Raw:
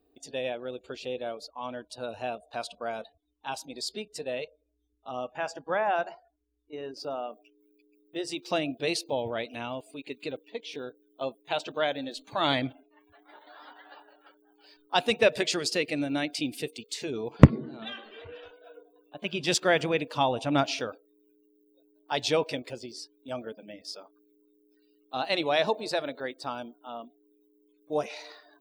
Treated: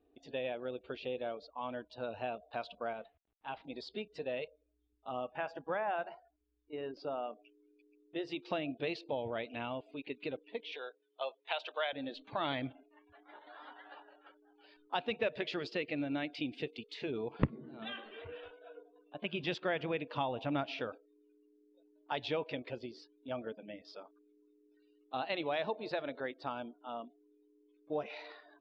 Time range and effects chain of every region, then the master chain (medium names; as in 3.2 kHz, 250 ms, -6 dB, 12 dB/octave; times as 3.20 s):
2.93–3.65 s: CVSD coder 64 kbps + low-pass 3.4 kHz 24 dB/octave + feedback comb 690 Hz, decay 0.2 s, mix 40%
10.72–11.93 s: high-pass 510 Hz 24 dB/octave + treble shelf 2.1 kHz +8.5 dB
whole clip: compression 2.5:1, threshold -32 dBFS; low-pass 3.5 kHz 24 dB/octave; trim -2.5 dB